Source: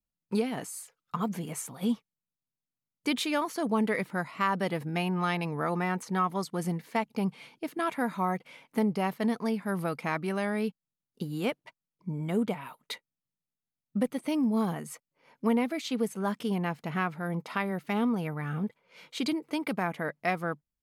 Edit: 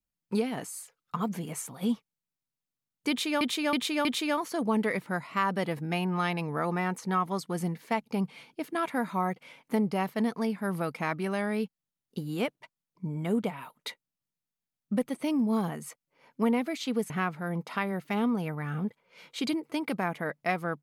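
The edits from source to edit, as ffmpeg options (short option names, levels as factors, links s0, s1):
-filter_complex "[0:a]asplit=5[s0][s1][s2][s3][s4];[s0]atrim=end=3.412[s5];[s1]atrim=start=3.088:end=3.412[s6];[s2]atrim=start=3.088:end=3.412[s7];[s3]atrim=start=3.088:end=16.142[s8];[s4]atrim=start=16.888[s9];[s5][s6]acrossfade=d=0.004:c1=hsin:c2=hsin[s10];[s10][s7]acrossfade=d=0.004:c1=hsin:c2=hsin[s11];[s11][s8]acrossfade=d=0.004:c1=hsin:c2=hsin[s12];[s12][s9]acrossfade=d=0.004:c1=hsin:c2=hsin"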